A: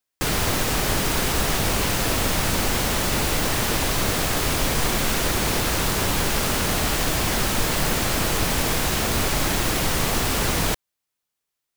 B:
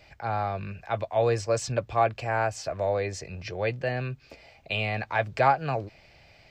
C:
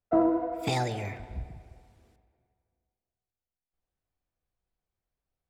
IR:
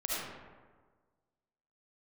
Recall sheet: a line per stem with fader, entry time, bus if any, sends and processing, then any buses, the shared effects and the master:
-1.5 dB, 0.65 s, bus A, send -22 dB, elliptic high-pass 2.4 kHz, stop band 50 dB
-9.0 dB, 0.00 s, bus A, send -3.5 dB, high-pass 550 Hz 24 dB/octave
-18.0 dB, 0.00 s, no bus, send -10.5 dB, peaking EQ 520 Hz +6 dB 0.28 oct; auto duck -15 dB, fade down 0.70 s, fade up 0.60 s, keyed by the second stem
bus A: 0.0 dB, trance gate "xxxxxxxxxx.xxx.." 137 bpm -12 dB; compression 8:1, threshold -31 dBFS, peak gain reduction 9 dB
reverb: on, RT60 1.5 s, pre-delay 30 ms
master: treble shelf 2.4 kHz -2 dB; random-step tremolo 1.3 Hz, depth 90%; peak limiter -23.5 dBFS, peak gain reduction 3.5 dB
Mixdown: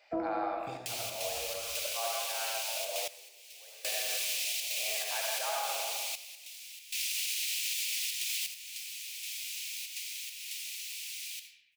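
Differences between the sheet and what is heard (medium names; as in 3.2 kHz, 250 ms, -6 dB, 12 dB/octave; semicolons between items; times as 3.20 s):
stem A -1.5 dB -> +8.5 dB; stem C -18.0 dB -> -9.5 dB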